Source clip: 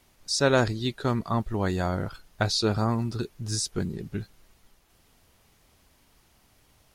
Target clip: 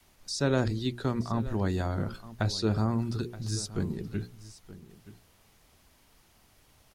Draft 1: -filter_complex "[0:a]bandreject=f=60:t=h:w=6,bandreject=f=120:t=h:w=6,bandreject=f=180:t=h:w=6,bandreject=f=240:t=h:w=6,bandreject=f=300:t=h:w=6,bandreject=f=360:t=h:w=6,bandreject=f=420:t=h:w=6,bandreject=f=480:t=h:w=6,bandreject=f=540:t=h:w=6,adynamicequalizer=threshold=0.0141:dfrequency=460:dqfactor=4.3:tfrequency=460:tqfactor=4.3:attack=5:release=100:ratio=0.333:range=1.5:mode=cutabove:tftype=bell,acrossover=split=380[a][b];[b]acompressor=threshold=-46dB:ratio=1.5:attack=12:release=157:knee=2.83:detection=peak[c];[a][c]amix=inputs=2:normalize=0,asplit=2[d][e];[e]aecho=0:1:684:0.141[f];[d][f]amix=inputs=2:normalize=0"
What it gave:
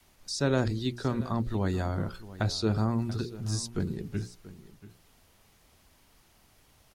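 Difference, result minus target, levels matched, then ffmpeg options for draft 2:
echo 0.24 s early
-filter_complex "[0:a]bandreject=f=60:t=h:w=6,bandreject=f=120:t=h:w=6,bandreject=f=180:t=h:w=6,bandreject=f=240:t=h:w=6,bandreject=f=300:t=h:w=6,bandreject=f=360:t=h:w=6,bandreject=f=420:t=h:w=6,bandreject=f=480:t=h:w=6,bandreject=f=540:t=h:w=6,adynamicequalizer=threshold=0.0141:dfrequency=460:dqfactor=4.3:tfrequency=460:tqfactor=4.3:attack=5:release=100:ratio=0.333:range=1.5:mode=cutabove:tftype=bell,acrossover=split=380[a][b];[b]acompressor=threshold=-46dB:ratio=1.5:attack=12:release=157:knee=2.83:detection=peak[c];[a][c]amix=inputs=2:normalize=0,asplit=2[d][e];[e]aecho=0:1:924:0.141[f];[d][f]amix=inputs=2:normalize=0"

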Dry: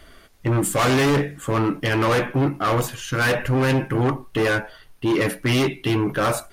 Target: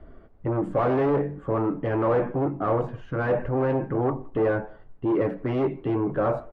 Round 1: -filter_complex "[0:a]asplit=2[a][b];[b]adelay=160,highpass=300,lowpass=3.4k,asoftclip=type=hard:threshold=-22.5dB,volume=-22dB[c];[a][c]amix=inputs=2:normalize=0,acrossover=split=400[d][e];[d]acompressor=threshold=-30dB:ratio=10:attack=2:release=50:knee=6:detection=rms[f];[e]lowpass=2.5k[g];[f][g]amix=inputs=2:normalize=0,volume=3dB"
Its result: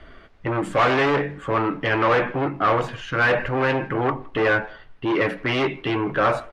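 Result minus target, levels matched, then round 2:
2000 Hz band +11.0 dB
-filter_complex "[0:a]asplit=2[a][b];[b]adelay=160,highpass=300,lowpass=3.4k,asoftclip=type=hard:threshold=-22.5dB,volume=-22dB[c];[a][c]amix=inputs=2:normalize=0,acrossover=split=400[d][e];[d]acompressor=threshold=-30dB:ratio=10:attack=2:release=50:knee=6:detection=rms[f];[e]lowpass=690[g];[f][g]amix=inputs=2:normalize=0,volume=3dB"

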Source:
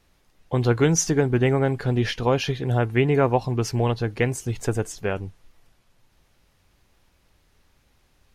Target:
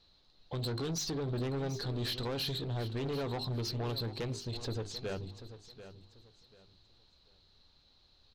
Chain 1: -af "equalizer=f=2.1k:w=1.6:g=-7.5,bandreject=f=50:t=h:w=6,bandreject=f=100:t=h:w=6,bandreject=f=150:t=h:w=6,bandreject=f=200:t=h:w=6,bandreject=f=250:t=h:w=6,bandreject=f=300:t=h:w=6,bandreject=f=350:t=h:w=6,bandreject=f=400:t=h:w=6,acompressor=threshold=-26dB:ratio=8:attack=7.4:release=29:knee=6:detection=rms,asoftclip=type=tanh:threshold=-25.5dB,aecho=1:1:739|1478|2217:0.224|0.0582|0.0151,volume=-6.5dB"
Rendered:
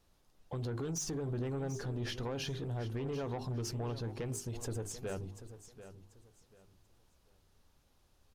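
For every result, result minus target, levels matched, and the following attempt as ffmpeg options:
4000 Hz band -6.5 dB; compressor: peak gain reduction +5.5 dB
-af "lowpass=f=4.1k:t=q:w=11,equalizer=f=2.1k:w=1.6:g=-7.5,bandreject=f=50:t=h:w=6,bandreject=f=100:t=h:w=6,bandreject=f=150:t=h:w=6,bandreject=f=200:t=h:w=6,bandreject=f=250:t=h:w=6,bandreject=f=300:t=h:w=6,bandreject=f=350:t=h:w=6,bandreject=f=400:t=h:w=6,acompressor=threshold=-26dB:ratio=8:attack=7.4:release=29:knee=6:detection=rms,asoftclip=type=tanh:threshold=-25.5dB,aecho=1:1:739|1478|2217:0.224|0.0582|0.0151,volume=-6.5dB"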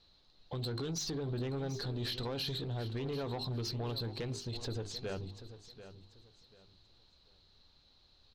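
compressor: peak gain reduction +5.5 dB
-af "lowpass=f=4.1k:t=q:w=11,equalizer=f=2.1k:w=1.6:g=-7.5,bandreject=f=50:t=h:w=6,bandreject=f=100:t=h:w=6,bandreject=f=150:t=h:w=6,bandreject=f=200:t=h:w=6,bandreject=f=250:t=h:w=6,bandreject=f=300:t=h:w=6,bandreject=f=350:t=h:w=6,bandreject=f=400:t=h:w=6,acompressor=threshold=-19.5dB:ratio=8:attack=7.4:release=29:knee=6:detection=rms,asoftclip=type=tanh:threshold=-25.5dB,aecho=1:1:739|1478|2217:0.224|0.0582|0.0151,volume=-6.5dB"

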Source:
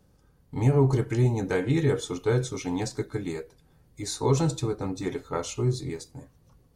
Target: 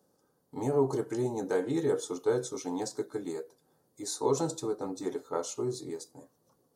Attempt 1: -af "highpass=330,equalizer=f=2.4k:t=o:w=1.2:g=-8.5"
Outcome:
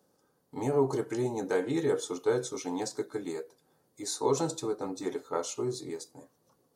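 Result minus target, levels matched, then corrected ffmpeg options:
2000 Hz band +3.5 dB
-af "highpass=330,equalizer=f=2.4k:t=o:w=1.2:g=-15"

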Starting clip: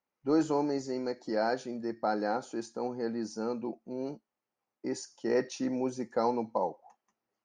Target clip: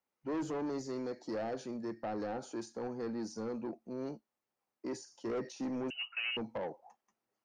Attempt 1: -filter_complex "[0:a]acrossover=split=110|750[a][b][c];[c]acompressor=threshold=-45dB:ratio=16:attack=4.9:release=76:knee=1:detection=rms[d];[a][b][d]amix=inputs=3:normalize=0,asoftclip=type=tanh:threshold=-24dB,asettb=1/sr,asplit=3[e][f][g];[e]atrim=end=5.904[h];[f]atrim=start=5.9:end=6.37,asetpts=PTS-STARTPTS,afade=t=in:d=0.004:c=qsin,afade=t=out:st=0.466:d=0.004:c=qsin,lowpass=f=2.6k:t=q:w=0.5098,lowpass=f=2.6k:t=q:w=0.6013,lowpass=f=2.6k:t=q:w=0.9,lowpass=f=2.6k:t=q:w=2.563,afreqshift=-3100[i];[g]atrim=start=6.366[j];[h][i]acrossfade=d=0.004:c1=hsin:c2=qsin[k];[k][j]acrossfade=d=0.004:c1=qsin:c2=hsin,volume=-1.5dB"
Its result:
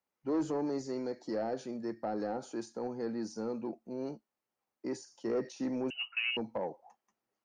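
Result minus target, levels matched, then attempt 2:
soft clip: distortion -7 dB
-filter_complex "[0:a]acrossover=split=110|750[a][b][c];[c]acompressor=threshold=-45dB:ratio=16:attack=4.9:release=76:knee=1:detection=rms[d];[a][b][d]amix=inputs=3:normalize=0,asoftclip=type=tanh:threshold=-31dB,asettb=1/sr,asplit=3[e][f][g];[e]atrim=end=5.904[h];[f]atrim=start=5.9:end=6.37,asetpts=PTS-STARTPTS,afade=t=in:d=0.004:c=qsin,afade=t=out:st=0.466:d=0.004:c=qsin,lowpass=f=2.6k:t=q:w=0.5098,lowpass=f=2.6k:t=q:w=0.6013,lowpass=f=2.6k:t=q:w=0.9,lowpass=f=2.6k:t=q:w=2.563,afreqshift=-3100[i];[g]atrim=start=6.366[j];[h][i]acrossfade=d=0.004:c1=hsin:c2=qsin[k];[k][j]acrossfade=d=0.004:c1=qsin:c2=hsin,volume=-1.5dB"

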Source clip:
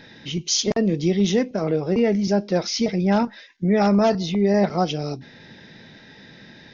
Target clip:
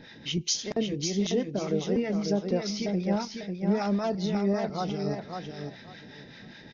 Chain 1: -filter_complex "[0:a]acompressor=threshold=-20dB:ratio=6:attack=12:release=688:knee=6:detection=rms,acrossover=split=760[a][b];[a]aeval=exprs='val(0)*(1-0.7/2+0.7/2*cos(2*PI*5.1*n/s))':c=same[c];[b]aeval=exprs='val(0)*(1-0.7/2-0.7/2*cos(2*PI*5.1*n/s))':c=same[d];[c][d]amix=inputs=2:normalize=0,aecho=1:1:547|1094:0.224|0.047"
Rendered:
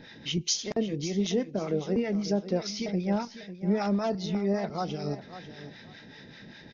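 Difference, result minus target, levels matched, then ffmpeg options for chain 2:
echo-to-direct -7.5 dB
-filter_complex "[0:a]acompressor=threshold=-20dB:ratio=6:attack=12:release=688:knee=6:detection=rms,acrossover=split=760[a][b];[a]aeval=exprs='val(0)*(1-0.7/2+0.7/2*cos(2*PI*5.1*n/s))':c=same[c];[b]aeval=exprs='val(0)*(1-0.7/2-0.7/2*cos(2*PI*5.1*n/s))':c=same[d];[c][d]amix=inputs=2:normalize=0,aecho=1:1:547|1094|1641:0.531|0.111|0.0234"

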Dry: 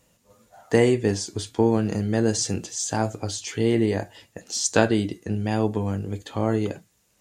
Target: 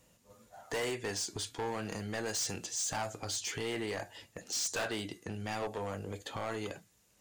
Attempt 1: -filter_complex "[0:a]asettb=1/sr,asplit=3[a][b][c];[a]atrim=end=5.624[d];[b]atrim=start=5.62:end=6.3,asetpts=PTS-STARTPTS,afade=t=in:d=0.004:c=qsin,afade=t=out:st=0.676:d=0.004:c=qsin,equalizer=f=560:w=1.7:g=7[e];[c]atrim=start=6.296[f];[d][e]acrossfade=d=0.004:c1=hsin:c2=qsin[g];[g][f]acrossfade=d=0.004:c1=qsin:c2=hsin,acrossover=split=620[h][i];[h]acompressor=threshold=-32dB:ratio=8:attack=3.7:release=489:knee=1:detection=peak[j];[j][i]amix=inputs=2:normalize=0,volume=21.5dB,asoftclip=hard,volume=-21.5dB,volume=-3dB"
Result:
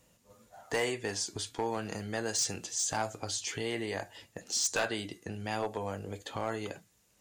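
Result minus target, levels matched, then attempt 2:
overloaded stage: distortion -6 dB
-filter_complex "[0:a]asettb=1/sr,asplit=3[a][b][c];[a]atrim=end=5.624[d];[b]atrim=start=5.62:end=6.3,asetpts=PTS-STARTPTS,afade=t=in:d=0.004:c=qsin,afade=t=out:st=0.676:d=0.004:c=qsin,equalizer=f=560:w=1.7:g=7[e];[c]atrim=start=6.296[f];[d][e]acrossfade=d=0.004:c1=hsin:c2=qsin[g];[g][f]acrossfade=d=0.004:c1=qsin:c2=hsin,acrossover=split=620[h][i];[h]acompressor=threshold=-32dB:ratio=8:attack=3.7:release=489:knee=1:detection=peak[j];[j][i]amix=inputs=2:normalize=0,volume=28.5dB,asoftclip=hard,volume=-28.5dB,volume=-3dB"

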